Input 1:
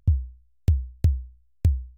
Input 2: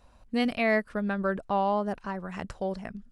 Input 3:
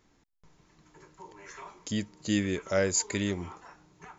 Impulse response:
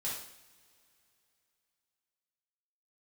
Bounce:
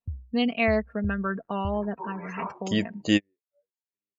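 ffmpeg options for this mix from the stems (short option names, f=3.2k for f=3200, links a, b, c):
-filter_complex "[0:a]volume=-14dB[a];[1:a]highpass=f=110:w=0.5412,highpass=f=110:w=1.3066,aecho=1:1:4.4:0.65,volume=-2dB,asplit=2[b][c];[2:a]lowpass=6.8k,equalizer=f=790:w=0.48:g=11,aeval=exprs='sgn(val(0))*max(abs(val(0))-0.002,0)':c=same,adelay=800,volume=2dB[d];[c]apad=whole_len=219657[e];[d][e]sidechaingate=range=-48dB:threshold=-60dB:ratio=16:detection=peak[f];[a][b][f]amix=inputs=3:normalize=0,afftdn=nr=32:nf=-43,equalizer=f=2.7k:w=3.9:g=7"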